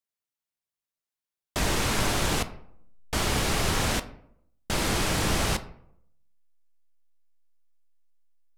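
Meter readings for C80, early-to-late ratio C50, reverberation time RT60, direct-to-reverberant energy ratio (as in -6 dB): 18.0 dB, 14.5 dB, 0.70 s, 10.0 dB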